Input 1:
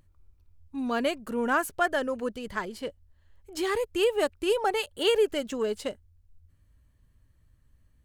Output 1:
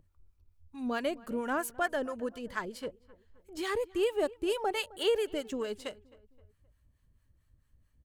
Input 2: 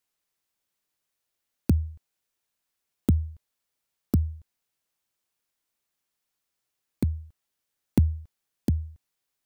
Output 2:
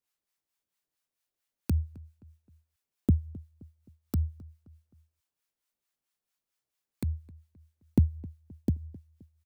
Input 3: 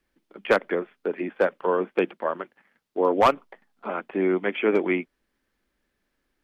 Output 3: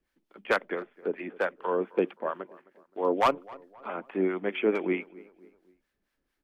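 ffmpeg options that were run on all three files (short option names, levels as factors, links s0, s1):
-filter_complex "[0:a]acrossover=split=750[s0][s1];[s0]aeval=exprs='val(0)*(1-0.7/2+0.7/2*cos(2*PI*4.5*n/s))':c=same[s2];[s1]aeval=exprs='val(0)*(1-0.7/2-0.7/2*cos(2*PI*4.5*n/s))':c=same[s3];[s2][s3]amix=inputs=2:normalize=0,asplit=2[s4][s5];[s5]adelay=262,lowpass=f=1900:p=1,volume=0.0891,asplit=2[s6][s7];[s7]adelay=262,lowpass=f=1900:p=1,volume=0.46,asplit=2[s8][s9];[s9]adelay=262,lowpass=f=1900:p=1,volume=0.46[s10];[s4][s6][s8][s10]amix=inputs=4:normalize=0,volume=0.841"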